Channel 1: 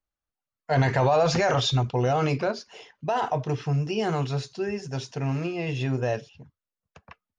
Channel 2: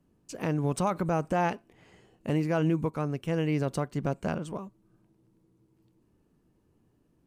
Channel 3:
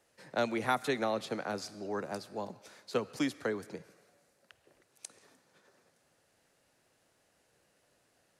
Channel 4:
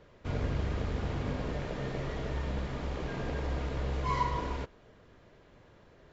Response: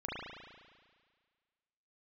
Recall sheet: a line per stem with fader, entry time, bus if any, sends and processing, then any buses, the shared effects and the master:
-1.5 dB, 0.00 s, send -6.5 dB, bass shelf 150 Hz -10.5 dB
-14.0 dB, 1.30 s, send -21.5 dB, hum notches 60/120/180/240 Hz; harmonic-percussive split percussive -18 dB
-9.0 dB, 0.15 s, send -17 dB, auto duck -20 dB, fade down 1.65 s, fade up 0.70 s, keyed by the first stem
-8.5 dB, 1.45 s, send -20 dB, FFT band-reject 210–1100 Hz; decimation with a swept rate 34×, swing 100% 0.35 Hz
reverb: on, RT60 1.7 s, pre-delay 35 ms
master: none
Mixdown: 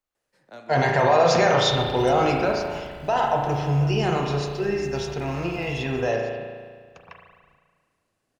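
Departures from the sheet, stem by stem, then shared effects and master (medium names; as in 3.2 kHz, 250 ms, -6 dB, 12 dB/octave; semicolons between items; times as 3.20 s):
stem 2: missing harmonic-percussive split percussive -18 dB; reverb return +7.0 dB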